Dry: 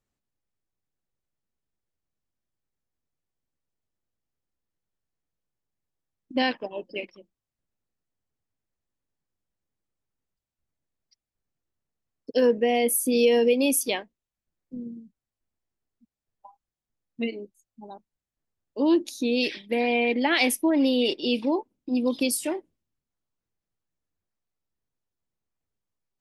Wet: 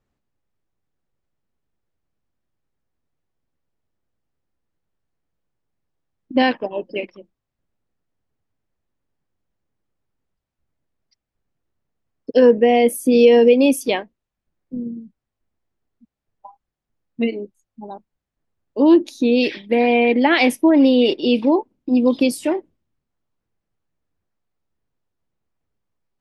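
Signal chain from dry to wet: low-pass 1.9 kHz 6 dB/octave; trim +9 dB

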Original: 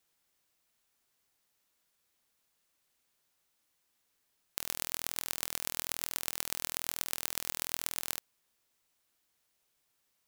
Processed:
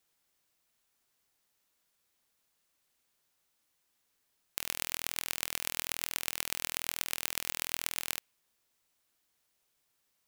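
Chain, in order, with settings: dynamic bell 2.5 kHz, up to +6 dB, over -58 dBFS, Q 1.4

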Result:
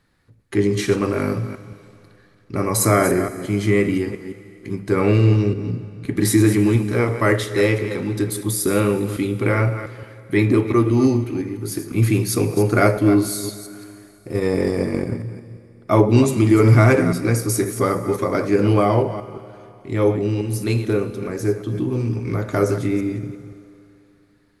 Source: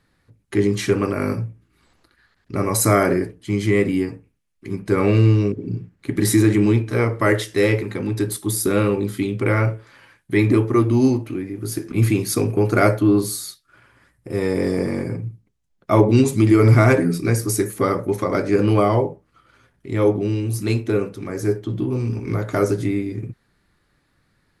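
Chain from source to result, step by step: chunks repeated in reverse 173 ms, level -11 dB; 14.33–15.20 s: transient shaper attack +7 dB, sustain -8 dB; Schroeder reverb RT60 2.8 s, combs from 26 ms, DRR 14 dB

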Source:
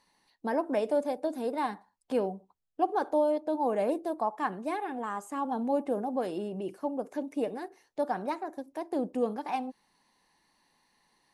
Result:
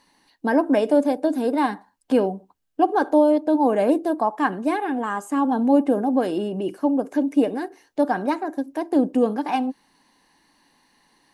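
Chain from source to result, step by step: small resonant body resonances 280/1600/2900 Hz, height 8 dB; trim +8 dB

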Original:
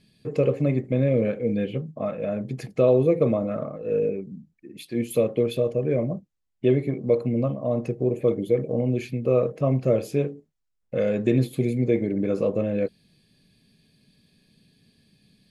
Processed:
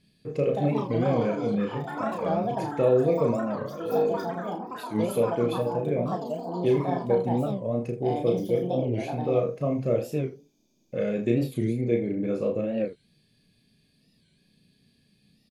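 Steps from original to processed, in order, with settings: ever faster or slower copies 296 ms, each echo +6 st, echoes 3, each echo -6 dB; on a send: early reflections 34 ms -4 dB, 79 ms -13 dB; on the sum: warped record 45 rpm, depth 160 cents; trim -5 dB

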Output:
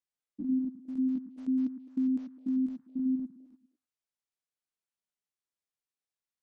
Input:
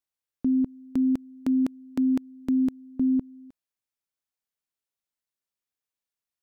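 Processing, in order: spectrogram pixelated in time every 100 ms; repeats whose band climbs or falls 104 ms, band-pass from 180 Hz, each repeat 1.4 oct, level -6 dB; trim -4.5 dB; MP3 40 kbps 48 kHz

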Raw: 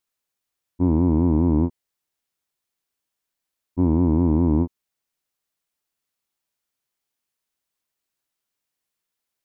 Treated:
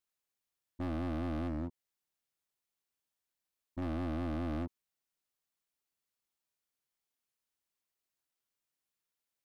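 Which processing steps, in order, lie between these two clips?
1.47–3.82 s: compression 12:1, threshold -21 dBFS, peak gain reduction 7.5 dB; overload inside the chain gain 27.5 dB; trim -7 dB

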